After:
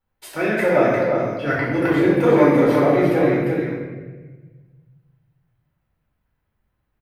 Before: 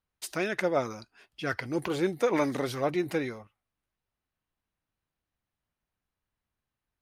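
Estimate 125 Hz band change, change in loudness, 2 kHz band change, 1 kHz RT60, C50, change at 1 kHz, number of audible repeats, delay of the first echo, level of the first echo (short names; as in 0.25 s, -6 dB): +15.0 dB, +12.5 dB, +11.0 dB, 1.2 s, -2.0 dB, +11.5 dB, 1, 0.349 s, -4.0 dB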